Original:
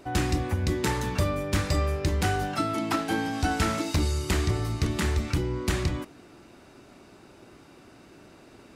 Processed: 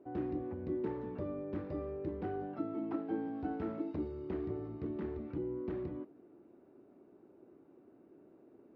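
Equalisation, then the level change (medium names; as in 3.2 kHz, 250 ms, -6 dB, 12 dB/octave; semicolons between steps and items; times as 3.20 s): band-pass filter 360 Hz, Q 1.6; distance through air 250 m; -5.0 dB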